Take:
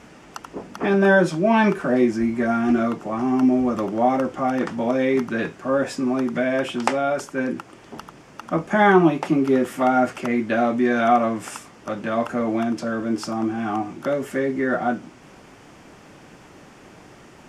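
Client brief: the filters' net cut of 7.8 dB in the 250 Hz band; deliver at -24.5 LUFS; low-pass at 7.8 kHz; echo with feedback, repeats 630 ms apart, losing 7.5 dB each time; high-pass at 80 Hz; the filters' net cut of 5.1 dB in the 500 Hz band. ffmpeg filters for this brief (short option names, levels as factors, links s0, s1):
-af "highpass=80,lowpass=7800,equalizer=f=250:t=o:g=-8,equalizer=f=500:t=o:g=-4.5,aecho=1:1:630|1260|1890|2520|3150:0.422|0.177|0.0744|0.0312|0.0131,volume=1.12"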